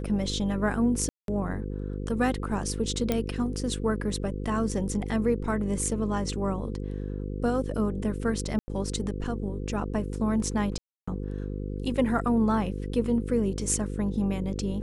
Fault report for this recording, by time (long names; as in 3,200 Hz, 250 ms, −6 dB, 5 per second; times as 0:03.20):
mains buzz 50 Hz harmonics 10 −33 dBFS
0:01.09–0:01.28: drop-out 192 ms
0:03.12: click −12 dBFS
0:08.59–0:08.68: drop-out 90 ms
0:10.78–0:11.07: drop-out 295 ms